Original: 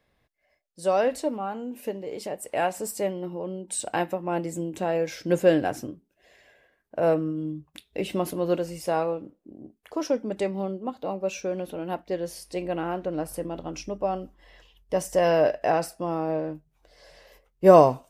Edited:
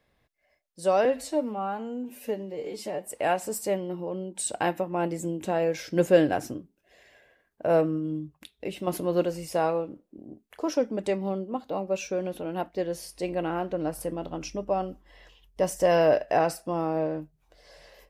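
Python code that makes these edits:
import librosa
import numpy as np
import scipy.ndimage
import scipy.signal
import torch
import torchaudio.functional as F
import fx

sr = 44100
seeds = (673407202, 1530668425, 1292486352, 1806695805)

y = fx.edit(x, sr, fx.stretch_span(start_s=1.05, length_s=1.34, factor=1.5),
    fx.fade_out_to(start_s=7.48, length_s=0.72, floor_db=-7.0), tone=tone)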